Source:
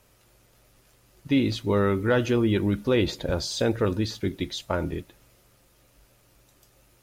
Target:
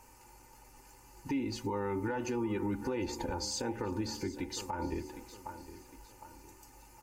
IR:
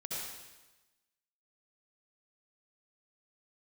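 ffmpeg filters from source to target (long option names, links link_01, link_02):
-af "aecho=1:1:3.4:0.6,bandreject=frequency=74.16:width_type=h:width=4,bandreject=frequency=148.32:width_type=h:width=4,bandreject=frequency=222.48:width_type=h:width=4,bandreject=frequency=296.64:width_type=h:width=4,bandreject=frequency=370.8:width_type=h:width=4,bandreject=frequency=444.96:width_type=h:width=4,bandreject=frequency=519.12:width_type=h:width=4,bandreject=frequency=593.28:width_type=h:width=4,bandreject=frequency=667.44:width_type=h:width=4,bandreject=frequency=741.6:width_type=h:width=4,bandreject=frequency=815.76:width_type=h:width=4,bandreject=frequency=889.92:width_type=h:width=4,bandreject=frequency=964.08:width_type=h:width=4,bandreject=frequency=1038.24:width_type=h:width=4,bandreject=frequency=1112.4:width_type=h:width=4,bandreject=frequency=1186.56:width_type=h:width=4,acompressor=threshold=-31dB:ratio=2.5,superequalizer=7b=1.58:8b=0.398:9b=3.98:13b=0.282:15b=1.58,aecho=1:1:759|1518|2277:0.141|0.0537|0.0204,alimiter=level_in=2.5dB:limit=-24dB:level=0:latency=1:release=199,volume=-2.5dB"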